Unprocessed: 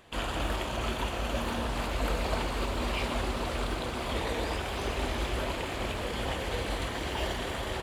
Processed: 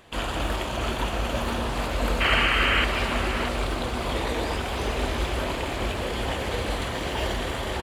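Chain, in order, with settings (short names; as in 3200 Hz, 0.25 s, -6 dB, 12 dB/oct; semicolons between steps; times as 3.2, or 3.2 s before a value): painted sound noise, 2.2–2.85, 1100–3200 Hz -27 dBFS; outdoor echo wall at 110 m, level -7 dB; gain +4 dB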